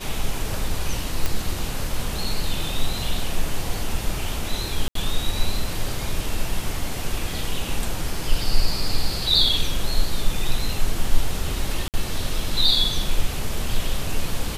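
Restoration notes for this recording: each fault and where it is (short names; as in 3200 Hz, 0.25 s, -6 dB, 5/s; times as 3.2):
1.26 pop -7 dBFS
4.88–4.95 gap 73 ms
11.88–11.94 gap 58 ms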